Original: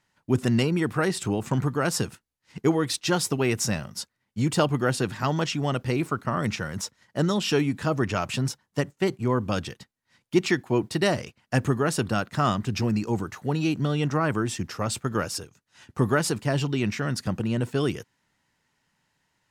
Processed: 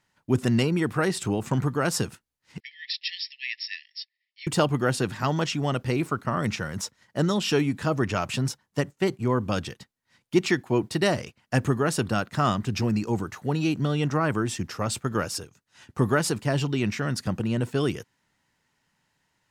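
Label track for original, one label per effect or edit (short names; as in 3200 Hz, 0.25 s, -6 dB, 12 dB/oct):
2.600000	4.470000	brick-wall FIR band-pass 1700–5600 Hz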